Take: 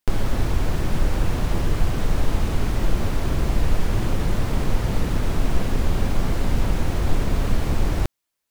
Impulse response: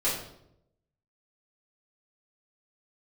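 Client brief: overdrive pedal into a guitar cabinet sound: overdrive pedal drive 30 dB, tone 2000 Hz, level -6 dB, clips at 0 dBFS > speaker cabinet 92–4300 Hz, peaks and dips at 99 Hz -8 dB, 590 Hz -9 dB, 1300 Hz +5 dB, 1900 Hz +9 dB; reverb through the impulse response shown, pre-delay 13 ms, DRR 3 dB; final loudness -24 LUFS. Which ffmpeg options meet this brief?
-filter_complex "[0:a]asplit=2[a][b];[1:a]atrim=start_sample=2205,adelay=13[c];[b][c]afir=irnorm=-1:irlink=0,volume=-13dB[d];[a][d]amix=inputs=2:normalize=0,asplit=2[e][f];[f]highpass=f=720:p=1,volume=30dB,asoftclip=type=tanh:threshold=0dB[g];[e][g]amix=inputs=2:normalize=0,lowpass=f=2k:p=1,volume=-6dB,highpass=92,equalizer=f=99:t=q:w=4:g=-8,equalizer=f=590:t=q:w=4:g=-9,equalizer=f=1.3k:t=q:w=4:g=5,equalizer=f=1.9k:t=q:w=4:g=9,lowpass=f=4.3k:w=0.5412,lowpass=f=4.3k:w=1.3066,volume=-12.5dB"

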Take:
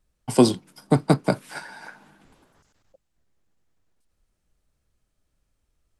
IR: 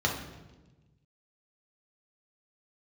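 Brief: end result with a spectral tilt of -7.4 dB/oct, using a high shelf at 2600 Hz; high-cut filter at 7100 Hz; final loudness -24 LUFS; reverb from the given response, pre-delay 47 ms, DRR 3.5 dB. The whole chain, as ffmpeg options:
-filter_complex "[0:a]lowpass=7.1k,highshelf=f=2.6k:g=-7,asplit=2[a][b];[1:a]atrim=start_sample=2205,adelay=47[c];[b][c]afir=irnorm=-1:irlink=0,volume=-14dB[d];[a][d]amix=inputs=2:normalize=0,volume=-3.5dB"

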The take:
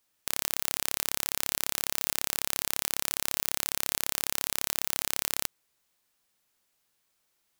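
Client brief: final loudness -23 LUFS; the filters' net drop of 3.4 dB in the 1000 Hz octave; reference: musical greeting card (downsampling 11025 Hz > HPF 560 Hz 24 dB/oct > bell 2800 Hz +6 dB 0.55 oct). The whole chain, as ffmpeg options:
-af "equalizer=f=1k:t=o:g=-4.5,aresample=11025,aresample=44100,highpass=f=560:w=0.5412,highpass=f=560:w=1.3066,equalizer=f=2.8k:t=o:w=0.55:g=6,volume=12dB"

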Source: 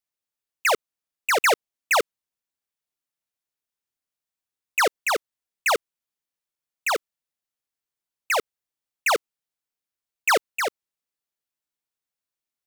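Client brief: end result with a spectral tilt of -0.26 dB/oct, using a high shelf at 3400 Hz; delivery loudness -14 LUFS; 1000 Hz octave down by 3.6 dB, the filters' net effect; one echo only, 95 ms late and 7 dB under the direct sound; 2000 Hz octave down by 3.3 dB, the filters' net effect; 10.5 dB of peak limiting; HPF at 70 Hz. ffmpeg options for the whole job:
-af "highpass=70,equalizer=f=1k:t=o:g=-4,equalizer=f=2k:t=o:g=-4.5,highshelf=f=3.4k:g=5,alimiter=limit=-21.5dB:level=0:latency=1,aecho=1:1:95:0.447,volume=19dB"

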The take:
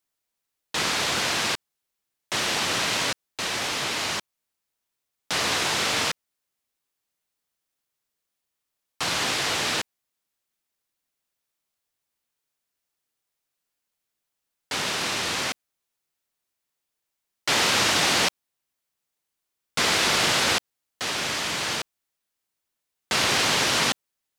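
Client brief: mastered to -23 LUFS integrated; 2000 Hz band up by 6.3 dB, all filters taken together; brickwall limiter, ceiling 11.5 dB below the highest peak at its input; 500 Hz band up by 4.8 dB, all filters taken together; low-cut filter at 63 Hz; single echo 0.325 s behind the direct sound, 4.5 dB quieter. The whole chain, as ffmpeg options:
-af "highpass=63,equalizer=f=500:t=o:g=5.5,equalizer=f=2k:t=o:g=7.5,alimiter=limit=-16dB:level=0:latency=1,aecho=1:1:325:0.596,volume=1dB"

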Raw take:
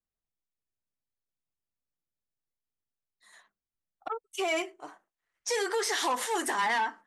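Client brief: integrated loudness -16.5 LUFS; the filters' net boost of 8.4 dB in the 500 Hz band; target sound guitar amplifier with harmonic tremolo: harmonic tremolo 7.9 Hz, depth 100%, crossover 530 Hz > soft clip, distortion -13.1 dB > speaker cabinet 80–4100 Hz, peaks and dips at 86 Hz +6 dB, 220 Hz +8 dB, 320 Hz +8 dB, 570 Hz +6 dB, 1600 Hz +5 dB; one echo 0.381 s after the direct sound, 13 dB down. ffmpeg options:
-filter_complex "[0:a]equalizer=f=500:t=o:g=6.5,aecho=1:1:381:0.224,acrossover=split=530[a][b];[a]aeval=exprs='val(0)*(1-1/2+1/2*cos(2*PI*7.9*n/s))':c=same[c];[b]aeval=exprs='val(0)*(1-1/2-1/2*cos(2*PI*7.9*n/s))':c=same[d];[c][d]amix=inputs=2:normalize=0,asoftclip=threshold=-29dB,highpass=80,equalizer=f=86:t=q:w=4:g=6,equalizer=f=220:t=q:w=4:g=8,equalizer=f=320:t=q:w=4:g=8,equalizer=f=570:t=q:w=4:g=6,equalizer=f=1.6k:t=q:w=4:g=5,lowpass=f=4.1k:w=0.5412,lowpass=f=4.1k:w=1.3066,volume=17.5dB"

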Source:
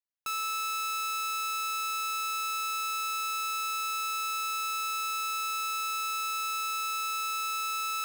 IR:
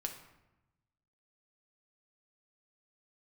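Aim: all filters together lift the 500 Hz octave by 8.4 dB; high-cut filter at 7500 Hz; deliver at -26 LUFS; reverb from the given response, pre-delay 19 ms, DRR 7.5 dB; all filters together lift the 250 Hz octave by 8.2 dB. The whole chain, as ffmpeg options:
-filter_complex "[0:a]lowpass=7.5k,equalizer=f=250:t=o:g=8.5,equalizer=f=500:t=o:g=7,asplit=2[a][b];[1:a]atrim=start_sample=2205,adelay=19[c];[b][c]afir=irnorm=-1:irlink=0,volume=-7dB[d];[a][d]amix=inputs=2:normalize=0,volume=5.5dB"

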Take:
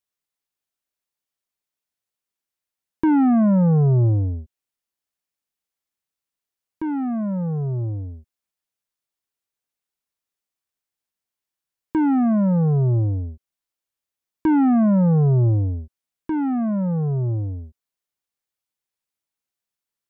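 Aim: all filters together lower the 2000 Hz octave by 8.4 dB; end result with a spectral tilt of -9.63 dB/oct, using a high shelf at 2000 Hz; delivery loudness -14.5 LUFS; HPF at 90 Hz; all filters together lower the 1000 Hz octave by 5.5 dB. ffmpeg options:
-af "highpass=90,equalizer=f=1k:t=o:g=-5,highshelf=f=2k:g=-7.5,equalizer=f=2k:t=o:g=-5.5,volume=6dB"

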